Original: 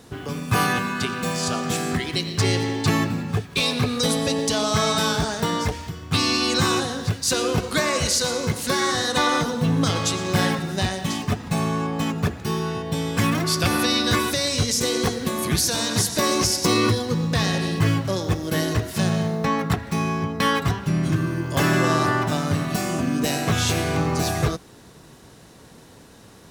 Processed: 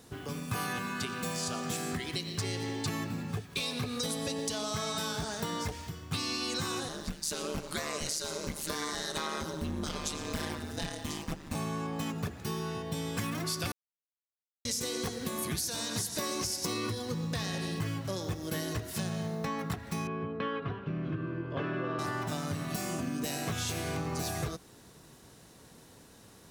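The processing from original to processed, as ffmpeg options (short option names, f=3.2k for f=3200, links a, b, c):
-filter_complex "[0:a]asettb=1/sr,asplit=3[a][b][c];[a]atrim=end=6.884[d];[b]atrim=start=6.88:end=11.55,asetpts=PTS-STARTPTS,afade=t=in:d=0.004:c=qsin,afade=t=out:st=4.666:d=0.004:c=qsin,aeval=exprs='val(0)*sin(2*PI*76*n/s)':c=same[e];[c]atrim=start=11.546[f];[d][e]acrossfade=d=0.004:c1=hsin:c2=qsin[g];[g][f]acrossfade=d=0.004:c1=qsin:c2=hsin,asettb=1/sr,asplit=3[h][i][j];[h]atrim=end=20.074[k];[i]atrim=start=20.07:end=21.99,asetpts=PTS-STARTPTS,afade=t=in:d=0.004:c=qsin,afade=t=out:st=1.916:d=0.004:c=qsin,highpass=110,equalizer=f=180:t=q:w=4:g=-4,equalizer=f=450:t=q:w=4:g=5,equalizer=f=840:t=q:w=4:g=-7,equalizer=f=2k:t=q:w=4:g=-8,lowpass=f=2.7k:w=0.5412,lowpass=f=2.7k:w=1.3066[l];[j]atrim=start=21.986[m];[k][l]acrossfade=d=0.004:c1=hsin:c2=qsin[n];[n][m]acrossfade=d=0.004:c1=qsin:c2=hsin,asplit=3[o][p][q];[o]atrim=end=13.72,asetpts=PTS-STARTPTS,afade=t=out:st=13.716:d=0.004:c=hsin[r];[p]atrim=start=13.72:end=14.65,asetpts=PTS-STARTPTS,volume=0[s];[q]atrim=start=14.65,asetpts=PTS-STARTPTS,afade=t=in:d=0.004:c=hsin[t];[r][s][t]concat=n=3:v=0:a=1,highshelf=f=6.5k:g=6.5,acompressor=threshold=-22dB:ratio=6,volume=-8.5dB"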